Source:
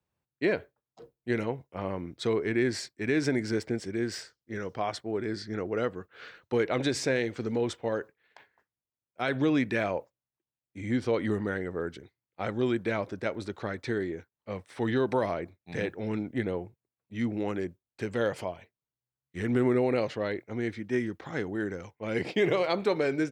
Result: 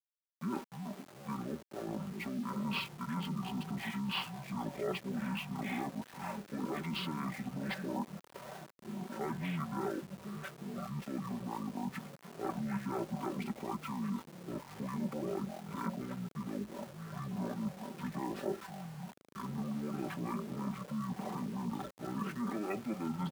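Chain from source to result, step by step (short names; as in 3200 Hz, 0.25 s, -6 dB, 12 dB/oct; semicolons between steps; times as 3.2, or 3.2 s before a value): notch 620 Hz, Q 17; pitch shift -9.5 st; air absorption 260 m; in parallel at +0.5 dB: vocal rider within 4 dB 0.5 s; on the sum: harmonic tremolo 4.2 Hz, depth 50%, crossover 410 Hz; limiter -20 dBFS, peak gain reduction 7.5 dB; reverse; compressor 20:1, threshold -33 dBFS, peak gain reduction 11 dB; reverse; echoes that change speed 0.153 s, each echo -5 st, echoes 3, each echo -6 dB; comb 5.2 ms, depth 59%; sample gate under -47.5 dBFS; HPF 200 Hz 12 dB/oct; high shelf 4900 Hz +5 dB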